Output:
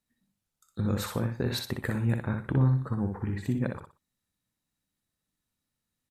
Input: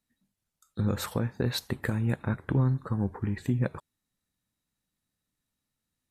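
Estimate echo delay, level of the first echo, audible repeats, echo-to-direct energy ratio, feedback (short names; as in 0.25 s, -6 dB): 61 ms, -5.0 dB, 3, -4.5 dB, 25%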